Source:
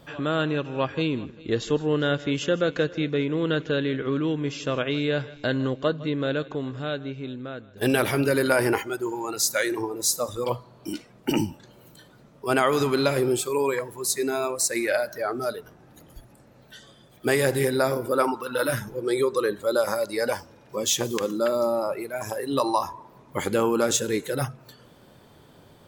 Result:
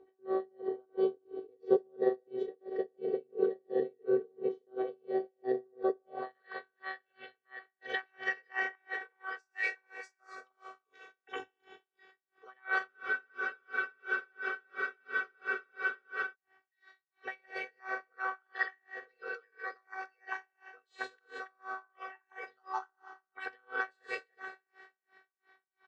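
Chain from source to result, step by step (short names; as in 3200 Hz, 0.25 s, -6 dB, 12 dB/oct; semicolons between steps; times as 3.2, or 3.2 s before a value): air absorption 180 m; Schroeder reverb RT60 2.1 s, combs from 29 ms, DRR 7 dB; dynamic EQ 2100 Hz, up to -4 dB, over -43 dBFS, Q 2.3; on a send: echo 0.154 s -17.5 dB; on the sum: robotiser 379 Hz; formant shift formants +3 st; band-pass sweep 400 Hz -> 1700 Hz, 5.94–6.45; spectral freeze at 12.9, 3.43 s; dB-linear tremolo 2.9 Hz, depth 39 dB; gain +4 dB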